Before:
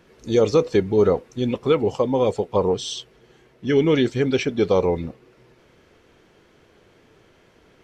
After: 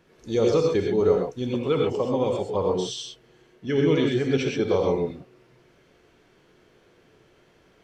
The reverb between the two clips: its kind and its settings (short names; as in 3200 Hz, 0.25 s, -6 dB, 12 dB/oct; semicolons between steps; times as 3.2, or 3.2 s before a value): non-linear reverb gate 0.15 s rising, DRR 0.5 dB; gain -6 dB